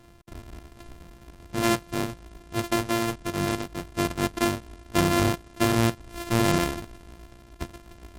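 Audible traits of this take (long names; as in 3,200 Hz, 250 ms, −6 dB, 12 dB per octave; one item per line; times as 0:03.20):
a buzz of ramps at a fixed pitch in blocks of 128 samples
MP3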